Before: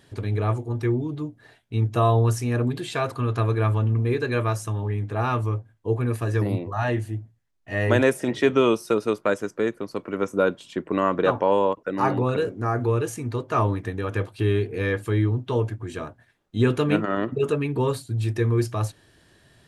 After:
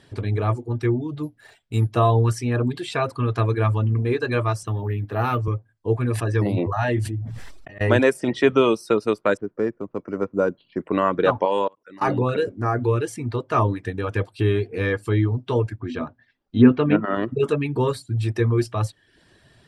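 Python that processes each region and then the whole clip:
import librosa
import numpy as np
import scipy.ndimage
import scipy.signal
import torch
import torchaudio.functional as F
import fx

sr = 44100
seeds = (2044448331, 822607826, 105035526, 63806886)

y = fx.chain(x, sr, fx.high_shelf(hz=3700.0, db=7.5),
    fx.resample_bad(factor=4, down='none', up='hold'), at=(1.23, 1.92))
y = fx.chain(y, sr, fx.highpass(hz=73.0, slope=24),
    fx.resample_bad(factor=3, down='filtered', up='hold'),
    fx.doppler_dist(depth_ms=0.13), at=(4.63, 5.48))
y = fx.chain(y, sr, fx.auto_swell(attack_ms=632.0),
    fx.sustainer(db_per_s=30.0), at=(6.1, 7.81))
y = fx.chain(y, sr, fx.resample_bad(factor=6, down='filtered', up='hold'),
    fx.spacing_loss(db_at_10k=38), at=(9.37, 10.81))
y = fx.chain(y, sr, fx.tilt_eq(slope=2.0),
    fx.level_steps(step_db=22), at=(11.45, 12.08))
y = fx.chain(y, sr, fx.lowpass(hz=5300.0, slope=24),
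    fx.env_lowpass_down(base_hz=2000.0, full_db=-16.5),
    fx.peak_eq(hz=250.0, db=11.0, octaves=0.23), at=(15.8, 17.14))
y = fx.dereverb_blind(y, sr, rt60_s=0.53)
y = scipy.signal.sosfilt(scipy.signal.butter(2, 8700.0, 'lowpass', fs=sr, output='sos'), y)
y = fx.notch(y, sr, hz=6600.0, q=9.1)
y = y * 10.0 ** (2.5 / 20.0)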